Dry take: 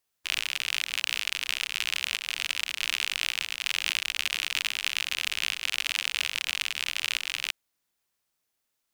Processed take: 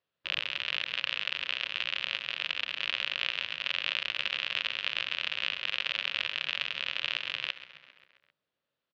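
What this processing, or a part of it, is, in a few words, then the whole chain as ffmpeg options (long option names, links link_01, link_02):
frequency-shifting delay pedal into a guitar cabinet: -filter_complex "[0:a]asplit=7[link_01][link_02][link_03][link_04][link_05][link_06][link_07];[link_02]adelay=133,afreqshift=-97,volume=-15.5dB[link_08];[link_03]adelay=266,afreqshift=-194,volume=-19.8dB[link_09];[link_04]adelay=399,afreqshift=-291,volume=-24.1dB[link_10];[link_05]adelay=532,afreqshift=-388,volume=-28.4dB[link_11];[link_06]adelay=665,afreqshift=-485,volume=-32.7dB[link_12];[link_07]adelay=798,afreqshift=-582,volume=-37dB[link_13];[link_01][link_08][link_09][link_10][link_11][link_12][link_13]amix=inputs=7:normalize=0,highpass=80,equalizer=frequency=150:width_type=q:width=4:gain=8,equalizer=frequency=550:width_type=q:width=4:gain=8,equalizer=frequency=800:width_type=q:width=4:gain=-5,equalizer=frequency=2200:width_type=q:width=4:gain=-5,lowpass=frequency=3600:width=0.5412,lowpass=frequency=3600:width=1.3066"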